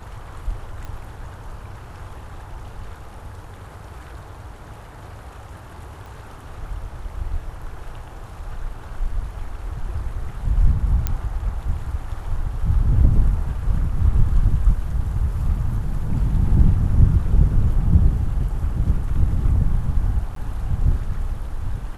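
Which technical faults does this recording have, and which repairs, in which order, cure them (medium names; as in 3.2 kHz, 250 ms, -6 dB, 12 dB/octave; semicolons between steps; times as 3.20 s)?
0.85 s: pop -21 dBFS
6.06 s: pop
11.07 s: pop -8 dBFS
20.35–20.36 s: dropout 13 ms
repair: de-click; interpolate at 20.35 s, 13 ms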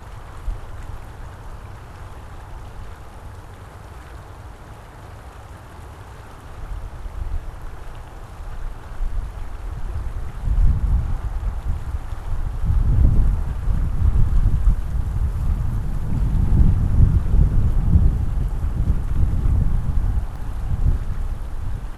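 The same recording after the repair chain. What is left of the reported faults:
6.06 s: pop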